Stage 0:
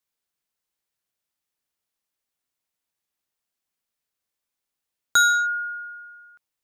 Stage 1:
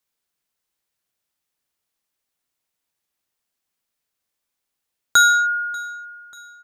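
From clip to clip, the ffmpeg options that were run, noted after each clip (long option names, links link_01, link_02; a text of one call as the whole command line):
ffmpeg -i in.wav -af "aecho=1:1:589|1178|1767|2356:0.075|0.0405|0.0219|0.0118,volume=4dB" out.wav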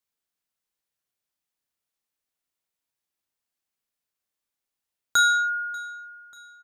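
ffmpeg -i in.wav -filter_complex "[0:a]asplit=2[link_01][link_02];[link_02]adelay=33,volume=-8.5dB[link_03];[link_01][link_03]amix=inputs=2:normalize=0,volume=-7dB" out.wav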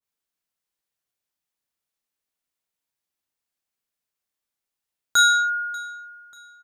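ffmpeg -i in.wav -af "adynamicequalizer=threshold=0.0251:dfrequency=1600:dqfactor=0.7:tfrequency=1600:tqfactor=0.7:attack=5:release=100:ratio=0.375:range=3:mode=boostabove:tftype=highshelf" out.wav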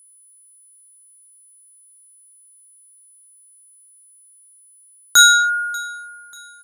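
ffmpeg -i in.wav -af "crystalizer=i=1.5:c=0,aeval=exprs='val(0)+0.00251*sin(2*PI*10000*n/s)':channel_layout=same,volume=4dB" out.wav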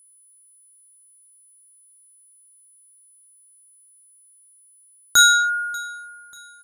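ffmpeg -i in.wav -af "lowshelf=frequency=350:gain=10,volume=-3.5dB" out.wav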